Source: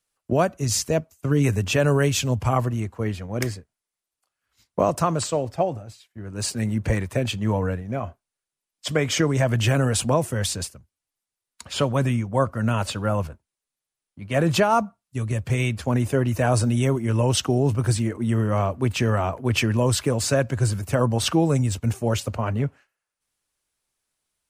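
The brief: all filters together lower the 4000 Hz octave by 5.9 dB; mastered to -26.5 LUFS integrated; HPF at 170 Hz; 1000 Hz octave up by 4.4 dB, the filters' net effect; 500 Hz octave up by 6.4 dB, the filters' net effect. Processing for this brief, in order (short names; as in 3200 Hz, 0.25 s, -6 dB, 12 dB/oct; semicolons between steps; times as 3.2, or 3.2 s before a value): HPF 170 Hz; bell 500 Hz +7 dB; bell 1000 Hz +3.5 dB; bell 4000 Hz -8.5 dB; gain -5.5 dB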